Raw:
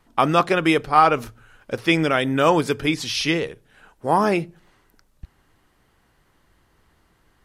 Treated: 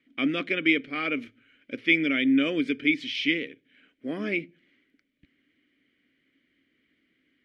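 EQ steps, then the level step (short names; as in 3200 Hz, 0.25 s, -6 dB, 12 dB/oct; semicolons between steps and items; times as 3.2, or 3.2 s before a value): vowel filter i; bell 580 Hz +8 dB 0.93 oct; bell 2000 Hz +7.5 dB 1.6 oct; +2.5 dB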